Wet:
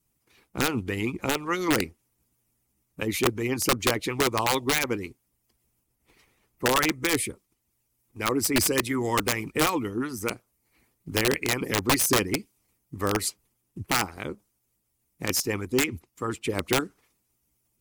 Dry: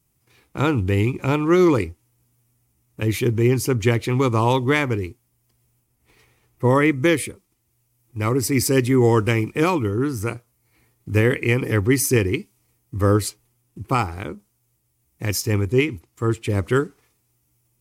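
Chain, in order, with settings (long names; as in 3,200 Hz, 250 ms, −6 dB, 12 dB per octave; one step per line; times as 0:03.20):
harmonic and percussive parts rebalanced harmonic −16 dB
wrap-around overflow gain 14.5 dB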